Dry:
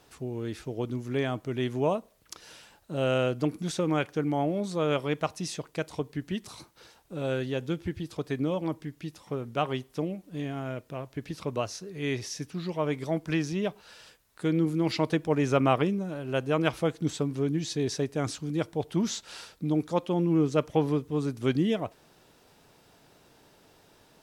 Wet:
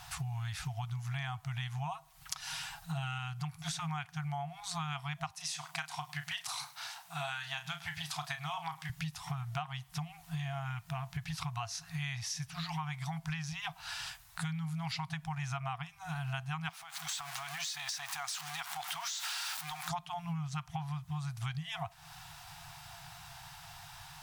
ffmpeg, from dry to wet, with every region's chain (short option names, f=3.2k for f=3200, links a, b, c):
-filter_complex "[0:a]asettb=1/sr,asplit=3[a][b][c];[a]atrim=end=1.914[d];[b]atrim=start=1.91:end=3.19,asetpts=PTS-STARTPTS,afade=t=in:d=0.004:c=qsin,afade=t=out:st=1.276:d=0.004:c=qsin,bandreject=f=50:t=h:w=6,bandreject=f=100:t=h:w=6,bandreject=f=150:t=h:w=6,bandreject=f=200:t=h:w=6,bandreject=f=250:t=h:w=6,bandreject=f=300:t=h:w=6,bandreject=f=350:t=h:w=6,bandreject=f=400:t=h:w=6,bandreject=f=450:t=h:w=6,aecho=1:1:6.3:0.49,atrim=end_sample=56448[e];[c]atrim=start=3.186[f];[d][e]acrossfade=d=0.004:c1=hsin:c2=qsin[g];[g][f]acrossfade=d=0.004:c1=qsin:c2=hsin,asettb=1/sr,asplit=3[h][i][j];[h]atrim=end=5.334[k];[i]atrim=start=5.33:end=8.9,asetpts=PTS-STARTPTS,afade=t=in:d=0.004:c=qsin,afade=t=out:st=3.566:d=0.004:c=qsin,highpass=310,asplit=2[l][m];[m]adelay=34,volume=-9.5dB[n];[l][n]amix=inputs=2:normalize=0,atrim=end_sample=157437,aecho=1:1:104:0.0794,atrim=end_sample=157437[o];[j]atrim=start=8.896[p];[k][o]acrossfade=d=0.004:c1=hsin:c2=qsin[q];[q][p]acrossfade=d=0.004:c1=qsin:c2=hsin,asettb=1/sr,asplit=3[r][s][t];[r]atrim=end=16.694[u];[s]atrim=start=16.69:end=19.89,asetpts=PTS-STARTPTS,afade=t=in:d=0.004:c=qsin,afade=t=out:st=3.196:d=0.004:c=qsin,aeval=exprs='val(0)+0.5*0.01*sgn(val(0))':c=same,highpass=770,acompressor=threshold=-40dB:ratio=8:attack=3.2:release=140:knee=1:detection=peak[v];[t]atrim=start=19.886[w];[u][v]acrossfade=d=0.004:c1=hsin:c2=qsin[x];[x][w]acrossfade=d=0.004:c1=qsin:c2=hsin,afftfilt=real='re*(1-between(b*sr/4096,170,670))':imag='im*(1-between(b*sr/4096,170,670))':win_size=4096:overlap=0.75,acompressor=threshold=-46dB:ratio=16,volume=11dB"